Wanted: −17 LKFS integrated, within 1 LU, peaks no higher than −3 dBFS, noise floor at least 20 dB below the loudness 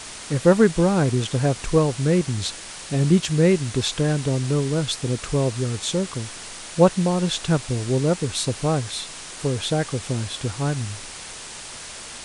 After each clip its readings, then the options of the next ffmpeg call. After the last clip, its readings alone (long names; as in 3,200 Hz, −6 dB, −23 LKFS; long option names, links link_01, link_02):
background noise floor −37 dBFS; target noise floor −42 dBFS; integrated loudness −22.0 LKFS; sample peak −4.0 dBFS; target loudness −17.0 LKFS
→ -af "afftdn=noise_reduction=6:noise_floor=-37"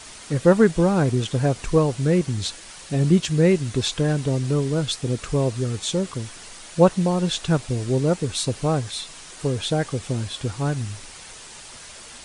background noise floor −42 dBFS; target noise floor −43 dBFS
→ -af "afftdn=noise_reduction=6:noise_floor=-42"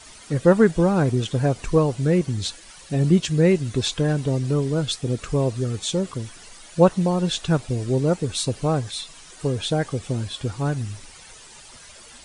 background noise floor −45 dBFS; integrated loudness −22.5 LKFS; sample peak −4.0 dBFS; target loudness −17.0 LKFS
→ -af "volume=5.5dB,alimiter=limit=-3dB:level=0:latency=1"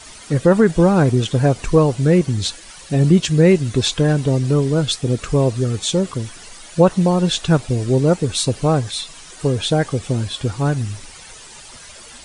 integrated loudness −17.5 LKFS; sample peak −3.0 dBFS; background noise floor −40 dBFS